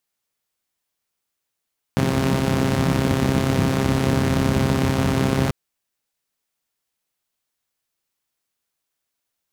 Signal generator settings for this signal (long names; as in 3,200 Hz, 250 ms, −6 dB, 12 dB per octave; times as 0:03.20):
pulse-train model of a four-cylinder engine, steady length 3.54 s, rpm 4,000, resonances 97/170 Hz